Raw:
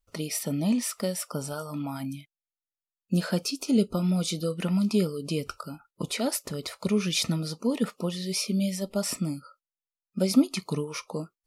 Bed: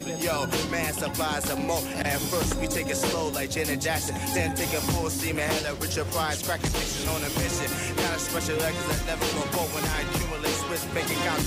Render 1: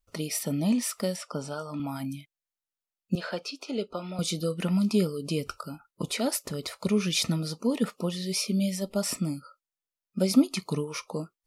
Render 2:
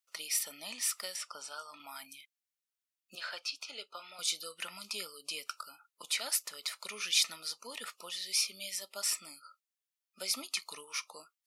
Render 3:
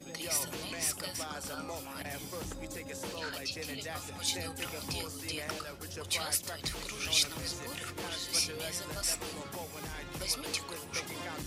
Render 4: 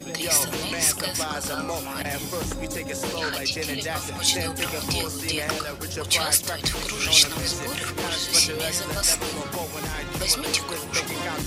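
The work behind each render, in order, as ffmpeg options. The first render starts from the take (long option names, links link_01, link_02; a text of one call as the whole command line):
ffmpeg -i in.wav -filter_complex "[0:a]asettb=1/sr,asplit=3[link_01][link_02][link_03];[link_01]atrim=end=1.164[link_04];[link_02]atrim=start=1.16:end=1.8,asetpts=PTS-STARTPTS,afade=type=in:duration=0.004:curve=qsin,afade=type=out:start_time=0.636:duration=0.004:curve=qsin,highpass=140,lowpass=5800[link_05];[link_03]atrim=start=1.796[link_06];[link_04][link_05]acrossfade=duration=0.004:curve1=hsin:curve2=qsin[link_07];[link_07][link_06]acrossfade=duration=0.004:curve1=qsin:curve2=hsin,asettb=1/sr,asplit=3[link_08][link_09][link_10];[link_08]atrim=end=3.154[link_11];[link_09]atrim=start=3.15:end=4.19,asetpts=PTS-STARTPTS,afade=type=in:duration=0.004:curve=qsin,afade=type=out:start_time=1.036:duration=0.004:curve=qsin,acrossover=split=390 4700:gain=0.158 1 0.112[link_12][link_13][link_14];[link_12][link_13][link_14]amix=inputs=3:normalize=0[link_15];[link_10]atrim=start=4.186[link_16];[link_11][link_15]acrossfade=duration=0.004:curve1=hsin:curve2=qsin[link_17];[link_17][link_16]acrossfade=duration=0.004:curve1=qsin:curve2=hsin" out.wav
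ffmpeg -i in.wav -af "highpass=1500" out.wav
ffmpeg -i in.wav -i bed.wav -filter_complex "[1:a]volume=-14.5dB[link_01];[0:a][link_01]amix=inputs=2:normalize=0" out.wav
ffmpeg -i in.wav -af "volume=11.5dB" out.wav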